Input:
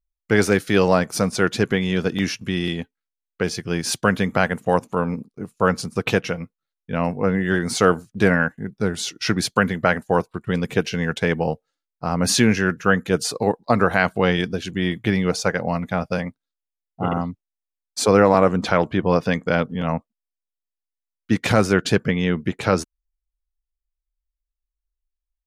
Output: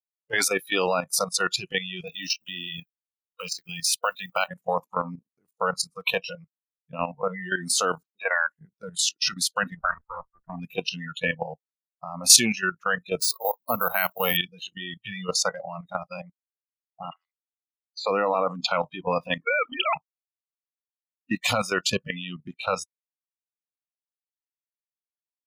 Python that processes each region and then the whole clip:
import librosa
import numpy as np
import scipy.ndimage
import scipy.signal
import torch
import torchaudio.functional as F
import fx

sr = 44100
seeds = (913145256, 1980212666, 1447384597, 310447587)

y = fx.chain(x, sr, fx.law_mismatch(coded='A'),
    fx.low_shelf(hz=98.0, db=-10.0),
    fx.band_squash(depth_pct=70), at=(2.07, 4.48))
y = fx.chain(y, sr, fx.bandpass_edges(low_hz=560.0, high_hz=4300.0),
    fx.air_absorb(metres=130.0), at=(8.03, 8.47))
y = fx.chain(y, sr, fx.lower_of_two(delay_ms=0.69),
    fx.lowpass(hz=1700.0, slope=24),
    fx.doppler_dist(depth_ms=0.29), at=(9.76, 10.6))
y = fx.chain(y, sr, fx.quant_companded(bits=6),
    fx.resample_bad(factor=3, down='filtered', up='hold'), at=(13.2, 14.37))
y = fx.chain(y, sr, fx.cheby1_highpass(hz=2100.0, order=3),
    fx.air_absorb(metres=160.0), at=(17.1, 18.05))
y = fx.chain(y, sr, fx.sine_speech(),
    fx.spectral_comp(ratio=2.0), at=(19.42, 19.96))
y = fx.noise_reduce_blind(y, sr, reduce_db=28)
y = fx.tilt_eq(y, sr, slope=3.0)
y = fx.level_steps(y, sr, step_db=12)
y = y * librosa.db_to_amplitude(1.0)